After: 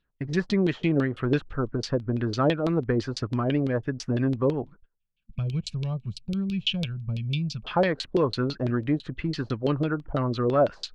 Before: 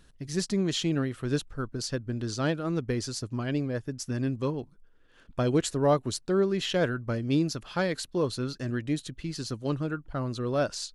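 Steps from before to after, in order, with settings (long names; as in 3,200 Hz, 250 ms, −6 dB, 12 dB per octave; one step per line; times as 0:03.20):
auto-filter low-pass saw down 6 Hz 420–3,800 Hz
noise gate −49 dBFS, range −26 dB
in parallel at +1 dB: downward compressor, threshold −31 dBFS, peak gain reduction 14.5 dB
on the sum: gain on a spectral selection 0:04.95–0:07.64, 220–2,200 Hz −23 dB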